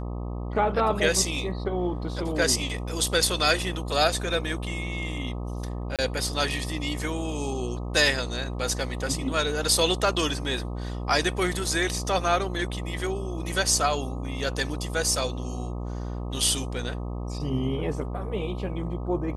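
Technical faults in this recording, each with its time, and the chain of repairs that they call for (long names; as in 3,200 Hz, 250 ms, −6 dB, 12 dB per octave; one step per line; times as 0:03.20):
mains buzz 60 Hz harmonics 21 −32 dBFS
0:05.96–0:05.99: drop-out 27 ms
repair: hum removal 60 Hz, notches 21
repair the gap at 0:05.96, 27 ms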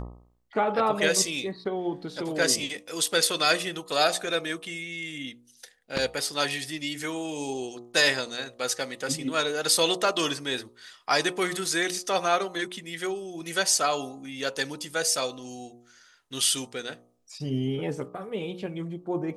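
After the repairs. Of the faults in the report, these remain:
none of them is left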